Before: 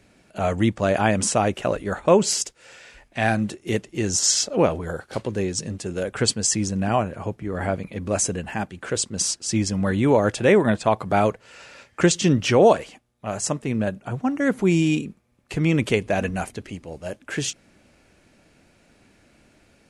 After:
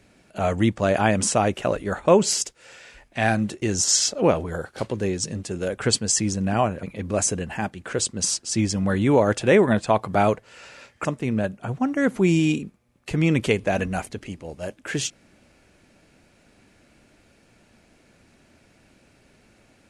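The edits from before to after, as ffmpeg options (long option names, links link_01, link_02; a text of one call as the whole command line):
ffmpeg -i in.wav -filter_complex "[0:a]asplit=4[link_01][link_02][link_03][link_04];[link_01]atrim=end=3.622[link_05];[link_02]atrim=start=3.968:end=7.182[link_06];[link_03]atrim=start=7.798:end=12.022[link_07];[link_04]atrim=start=13.478[link_08];[link_05][link_06]acrossfade=duration=0.004:curve1=hsin:curve2=hsin[link_09];[link_09][link_07]acrossfade=duration=0.004:curve1=hsin:curve2=hsin[link_10];[link_10][link_08]acrossfade=duration=0.004:curve1=hsin:curve2=hsin" out.wav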